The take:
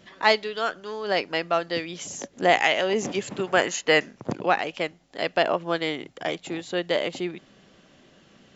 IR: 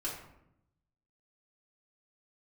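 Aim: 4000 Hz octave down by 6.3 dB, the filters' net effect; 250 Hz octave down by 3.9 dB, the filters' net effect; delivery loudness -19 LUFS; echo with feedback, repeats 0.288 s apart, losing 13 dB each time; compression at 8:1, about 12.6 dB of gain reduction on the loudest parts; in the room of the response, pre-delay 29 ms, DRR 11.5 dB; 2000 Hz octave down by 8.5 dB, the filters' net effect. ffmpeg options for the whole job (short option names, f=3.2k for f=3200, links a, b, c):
-filter_complex "[0:a]equalizer=f=250:t=o:g=-6,equalizer=f=2k:t=o:g=-9,equalizer=f=4k:t=o:g=-4.5,acompressor=threshold=-30dB:ratio=8,aecho=1:1:288|576|864:0.224|0.0493|0.0108,asplit=2[a][b];[1:a]atrim=start_sample=2205,adelay=29[c];[b][c]afir=irnorm=-1:irlink=0,volume=-14dB[d];[a][d]amix=inputs=2:normalize=0,volume=17dB"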